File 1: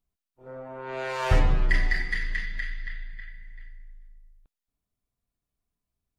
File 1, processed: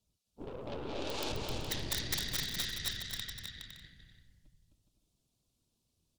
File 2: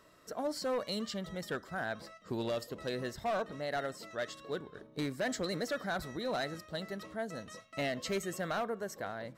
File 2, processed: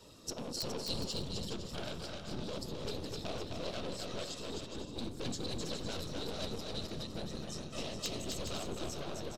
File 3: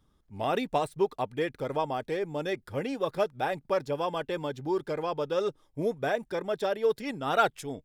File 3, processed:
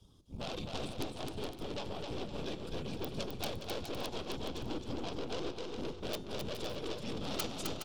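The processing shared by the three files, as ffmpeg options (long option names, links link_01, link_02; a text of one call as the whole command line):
ffmpeg -i in.wav -af "highpass=frequency=76:width=0.5412,highpass=frequency=76:width=1.3066,aemphasis=mode=reproduction:type=75fm,afreqshift=-56,tiltshelf=frequency=660:gain=7.5,acompressor=threshold=-44dB:ratio=3,flanger=delay=2.1:depth=6.2:regen=60:speed=0.71:shape=sinusoidal,afftfilt=real='hypot(re,im)*cos(2*PI*random(0))':imag='hypot(re,im)*sin(2*PI*random(1))':win_size=512:overlap=0.75,aeval=exprs='(tanh(501*val(0)+0.7)-tanh(0.7))/501':channel_layout=same,bandreject=frequency=179.7:width_type=h:width=4,bandreject=frequency=359.4:width_type=h:width=4,bandreject=frequency=539.1:width_type=h:width=4,bandreject=frequency=718.8:width_type=h:width=4,bandreject=frequency=898.5:width_type=h:width=4,bandreject=frequency=1078.2:width_type=h:width=4,bandreject=frequency=1257.9:width_type=h:width=4,bandreject=frequency=1437.6:width_type=h:width=4,bandreject=frequency=1617.3:width_type=h:width=4,bandreject=frequency=1797:width_type=h:width=4,bandreject=frequency=1976.7:width_type=h:width=4,bandreject=frequency=2156.4:width_type=h:width=4,bandreject=frequency=2336.1:width_type=h:width=4,bandreject=frequency=2515.8:width_type=h:width=4,bandreject=frequency=2695.5:width_type=h:width=4,bandreject=frequency=2875.2:width_type=h:width=4,bandreject=frequency=3054.9:width_type=h:width=4,bandreject=frequency=3234.6:width_type=h:width=4,bandreject=frequency=3414.3:width_type=h:width=4,bandreject=frequency=3594:width_type=h:width=4,bandreject=frequency=3773.7:width_type=h:width=4,bandreject=frequency=3953.4:width_type=h:width=4,bandreject=frequency=4133.1:width_type=h:width=4,bandreject=frequency=4312.8:width_type=h:width=4,bandreject=frequency=4492.5:width_type=h:width=4,bandreject=frequency=4672.2:width_type=h:width=4,bandreject=frequency=4851.9:width_type=h:width=4,bandreject=frequency=5031.6:width_type=h:width=4,bandreject=frequency=5211.3:width_type=h:width=4,bandreject=frequency=5391:width_type=h:width=4,bandreject=frequency=5570.7:width_type=h:width=4,bandreject=frequency=5750.4:width_type=h:width=4,bandreject=frequency=5930.1:width_type=h:width=4,bandreject=frequency=6109.8:width_type=h:width=4,bandreject=frequency=6289.5:width_type=h:width=4,bandreject=frequency=6469.2:width_type=h:width=4,bandreject=frequency=6648.9:width_type=h:width=4,bandreject=frequency=6828.6:width_type=h:width=4,bandreject=frequency=7008.3:width_type=h:width=4,aexciter=amount=11:drive=6.4:freq=2900,aeval=exprs='(mod(119*val(0)+1,2)-1)/119':channel_layout=same,aecho=1:1:260|416|509.6|565.8|599.5:0.631|0.398|0.251|0.158|0.1,volume=16.5dB" out.wav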